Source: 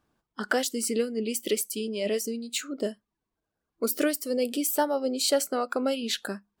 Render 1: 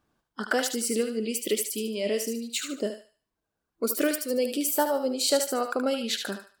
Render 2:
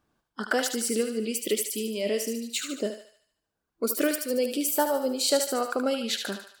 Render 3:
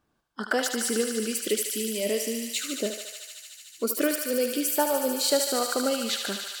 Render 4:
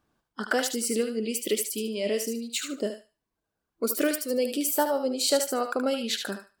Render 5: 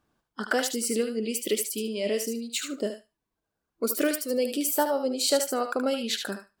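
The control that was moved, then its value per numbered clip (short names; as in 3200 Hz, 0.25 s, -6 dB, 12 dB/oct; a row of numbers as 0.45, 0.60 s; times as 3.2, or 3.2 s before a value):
thinning echo, feedback: 34, 53, 90, 23, 15%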